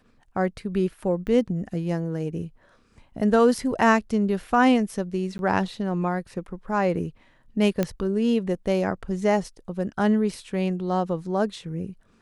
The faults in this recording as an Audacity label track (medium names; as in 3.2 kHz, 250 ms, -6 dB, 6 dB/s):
1.270000	1.280000	dropout 7.8 ms
5.380000	5.390000	dropout 11 ms
7.830000	7.830000	pop -11 dBFS